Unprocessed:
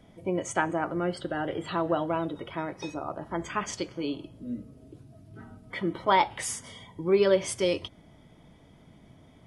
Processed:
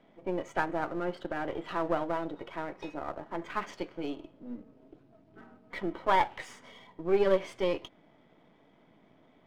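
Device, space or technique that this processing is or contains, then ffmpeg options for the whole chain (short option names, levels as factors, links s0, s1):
crystal radio: -af "highpass=260,lowpass=2700,aeval=exprs='if(lt(val(0),0),0.447*val(0),val(0))':c=same"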